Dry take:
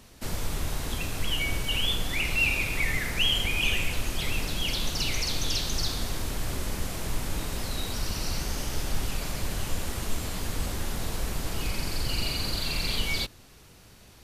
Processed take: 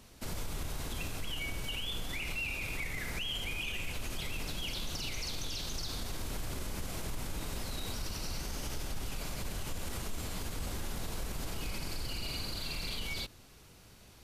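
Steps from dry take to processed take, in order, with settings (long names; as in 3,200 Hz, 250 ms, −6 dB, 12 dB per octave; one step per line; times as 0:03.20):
brickwall limiter −24.5 dBFS, peak gain reduction 11.5 dB
notch filter 1,800 Hz, Q 25
level −4 dB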